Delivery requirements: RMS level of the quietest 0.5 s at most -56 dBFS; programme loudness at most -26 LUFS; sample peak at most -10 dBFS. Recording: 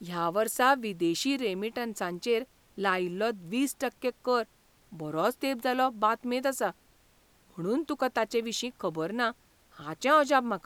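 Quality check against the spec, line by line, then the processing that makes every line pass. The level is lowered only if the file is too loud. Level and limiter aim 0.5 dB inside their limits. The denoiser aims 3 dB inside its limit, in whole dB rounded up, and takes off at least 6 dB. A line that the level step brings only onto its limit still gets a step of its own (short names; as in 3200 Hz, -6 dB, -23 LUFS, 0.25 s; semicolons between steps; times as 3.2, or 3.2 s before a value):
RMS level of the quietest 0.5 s -63 dBFS: OK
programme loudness -29.5 LUFS: OK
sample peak -11.0 dBFS: OK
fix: none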